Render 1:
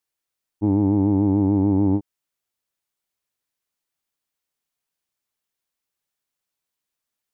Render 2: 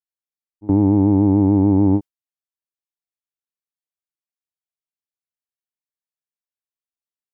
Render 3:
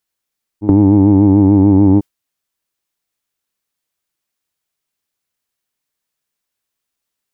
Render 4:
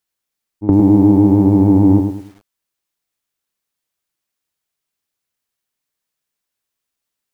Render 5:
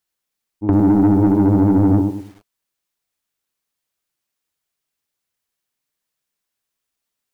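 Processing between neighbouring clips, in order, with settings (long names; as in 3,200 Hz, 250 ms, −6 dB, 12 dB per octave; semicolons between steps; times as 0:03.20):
noise gate with hold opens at −11 dBFS; level +4 dB
parametric band 740 Hz −2 dB; boost into a limiter +17 dB; level −1 dB
feedback echo at a low word length 104 ms, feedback 35%, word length 7 bits, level −6.5 dB; level −1.5 dB
flanger 1.3 Hz, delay 0.9 ms, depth 8.5 ms, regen −60%; soft clipping −12 dBFS, distortion −16 dB; level +4 dB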